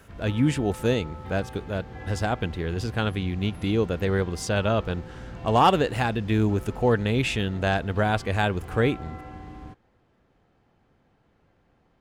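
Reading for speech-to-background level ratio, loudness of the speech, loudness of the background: 16.0 dB, -25.5 LUFS, -41.5 LUFS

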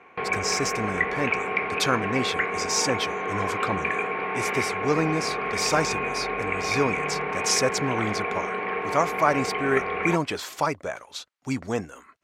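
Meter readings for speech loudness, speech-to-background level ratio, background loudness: -28.0 LUFS, -0.5 dB, -27.5 LUFS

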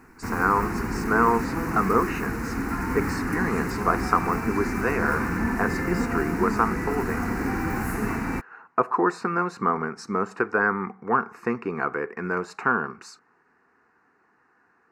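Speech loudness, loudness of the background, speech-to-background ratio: -26.5 LUFS, -28.0 LUFS, 1.5 dB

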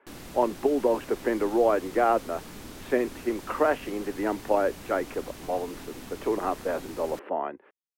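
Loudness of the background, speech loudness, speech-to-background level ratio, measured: -43.0 LUFS, -28.0 LUFS, 15.0 dB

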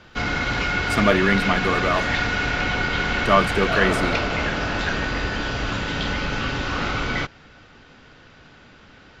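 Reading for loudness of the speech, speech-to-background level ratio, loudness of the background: -22.0 LUFS, 1.5 dB, -23.5 LUFS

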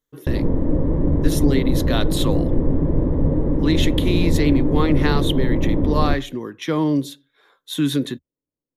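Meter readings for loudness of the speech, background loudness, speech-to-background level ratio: -23.5 LUFS, -21.5 LUFS, -2.0 dB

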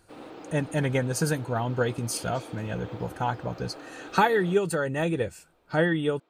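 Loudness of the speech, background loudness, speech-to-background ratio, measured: -28.0 LUFS, -44.0 LUFS, 16.0 dB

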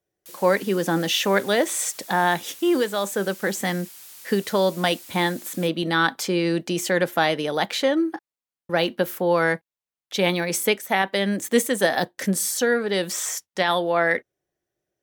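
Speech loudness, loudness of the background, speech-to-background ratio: -23.0 LUFS, -41.0 LUFS, 18.0 dB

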